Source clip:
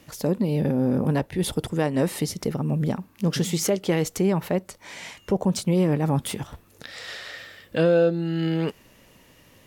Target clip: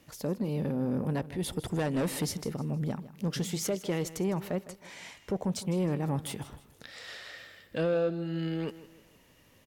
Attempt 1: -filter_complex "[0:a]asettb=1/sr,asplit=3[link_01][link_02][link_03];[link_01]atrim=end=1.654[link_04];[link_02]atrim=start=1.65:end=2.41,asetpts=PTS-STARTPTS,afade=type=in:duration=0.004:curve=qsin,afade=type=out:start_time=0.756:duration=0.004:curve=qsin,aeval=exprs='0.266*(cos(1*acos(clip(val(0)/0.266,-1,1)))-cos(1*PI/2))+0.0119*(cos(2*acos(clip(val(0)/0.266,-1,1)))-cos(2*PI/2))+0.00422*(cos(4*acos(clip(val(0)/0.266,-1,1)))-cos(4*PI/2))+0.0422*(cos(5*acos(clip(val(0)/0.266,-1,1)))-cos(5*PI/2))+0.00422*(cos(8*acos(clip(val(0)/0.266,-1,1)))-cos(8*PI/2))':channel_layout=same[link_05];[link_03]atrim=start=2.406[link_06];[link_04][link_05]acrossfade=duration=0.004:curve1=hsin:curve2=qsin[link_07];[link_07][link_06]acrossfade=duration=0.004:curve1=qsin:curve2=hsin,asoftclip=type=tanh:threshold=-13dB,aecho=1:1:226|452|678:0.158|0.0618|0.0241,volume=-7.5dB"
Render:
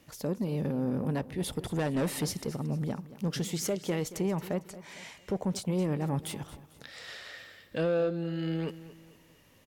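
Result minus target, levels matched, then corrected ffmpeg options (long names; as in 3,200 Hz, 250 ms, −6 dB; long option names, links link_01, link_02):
echo 69 ms late
-filter_complex "[0:a]asettb=1/sr,asplit=3[link_01][link_02][link_03];[link_01]atrim=end=1.654[link_04];[link_02]atrim=start=1.65:end=2.41,asetpts=PTS-STARTPTS,afade=type=in:duration=0.004:curve=qsin,afade=type=out:start_time=0.756:duration=0.004:curve=qsin,aeval=exprs='0.266*(cos(1*acos(clip(val(0)/0.266,-1,1)))-cos(1*PI/2))+0.0119*(cos(2*acos(clip(val(0)/0.266,-1,1)))-cos(2*PI/2))+0.00422*(cos(4*acos(clip(val(0)/0.266,-1,1)))-cos(4*PI/2))+0.0422*(cos(5*acos(clip(val(0)/0.266,-1,1)))-cos(5*PI/2))+0.00422*(cos(8*acos(clip(val(0)/0.266,-1,1)))-cos(8*PI/2))':channel_layout=same[link_05];[link_03]atrim=start=2.406[link_06];[link_04][link_05]acrossfade=duration=0.004:curve1=hsin:curve2=qsin[link_07];[link_07][link_06]acrossfade=duration=0.004:curve1=qsin:curve2=hsin,asoftclip=type=tanh:threshold=-13dB,aecho=1:1:157|314|471:0.158|0.0618|0.0241,volume=-7.5dB"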